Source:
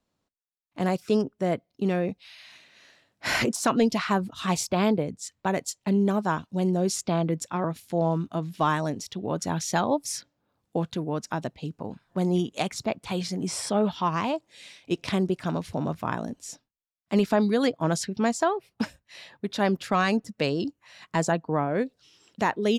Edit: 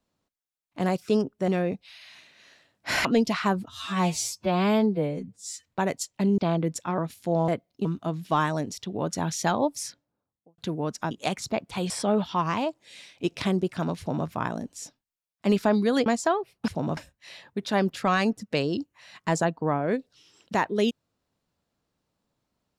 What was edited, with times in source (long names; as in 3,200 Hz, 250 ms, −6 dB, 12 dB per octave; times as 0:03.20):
0:01.48–0:01.85: move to 0:08.14
0:03.42–0:03.70: remove
0:04.34–0:05.32: time-stretch 2×
0:06.05–0:07.04: remove
0:09.96–0:10.87: fade out and dull
0:11.40–0:12.45: remove
0:13.24–0:13.57: remove
0:15.66–0:15.95: duplicate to 0:18.84
0:17.73–0:18.22: remove